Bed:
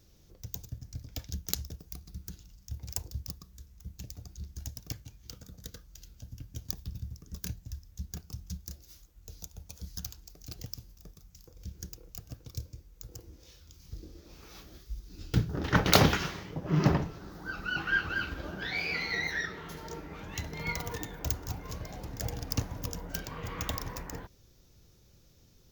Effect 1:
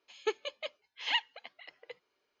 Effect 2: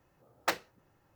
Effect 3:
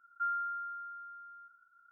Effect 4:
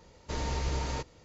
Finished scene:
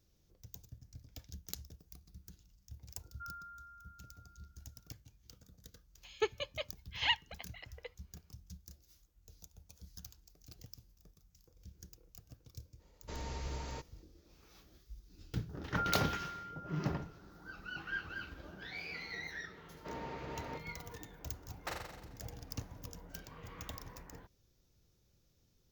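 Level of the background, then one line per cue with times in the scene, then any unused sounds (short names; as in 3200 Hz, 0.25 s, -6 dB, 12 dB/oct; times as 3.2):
bed -11.5 dB
3 add 3 -14 dB
5.95 add 1 -1 dB
12.79 add 4 -9.5 dB + expander -55 dBFS
15.57 add 3 -3.5 dB
19.56 add 4 -6.5 dB + BPF 170–2300 Hz
21.19 add 2 -13 dB + flutter echo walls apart 7.5 m, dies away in 0.97 s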